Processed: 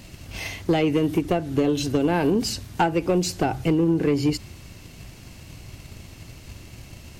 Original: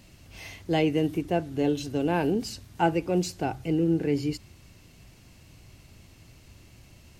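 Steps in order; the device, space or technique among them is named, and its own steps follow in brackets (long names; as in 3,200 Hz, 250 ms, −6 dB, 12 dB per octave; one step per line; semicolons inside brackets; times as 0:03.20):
drum-bus smash (transient designer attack +6 dB, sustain +1 dB; downward compressor 12 to 1, threshold −23 dBFS, peak gain reduction 10.5 dB; soft clipping −21 dBFS, distortion −16 dB)
level +9 dB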